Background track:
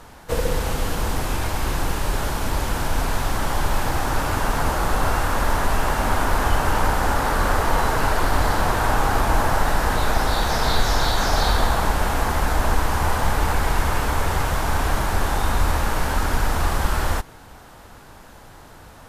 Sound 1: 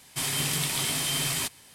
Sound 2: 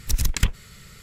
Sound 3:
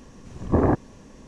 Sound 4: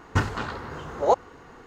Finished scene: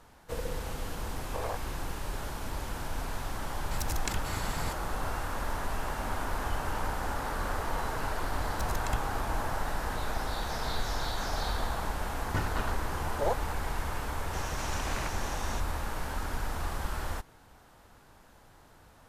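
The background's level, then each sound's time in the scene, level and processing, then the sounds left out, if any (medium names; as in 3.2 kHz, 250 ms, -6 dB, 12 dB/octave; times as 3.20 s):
background track -13 dB
0.81 s: add 3 -10.5 dB + elliptic high-pass 470 Hz
3.71 s: add 2 -15.5 dB + level flattener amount 70%
8.50 s: add 2 -17 dB + comb 1.5 ms
12.19 s: add 4 -5.5 dB + peak limiter -15 dBFS
14.33 s: add 3 -15 dB + spectrum-flattening compressor 10:1
not used: 1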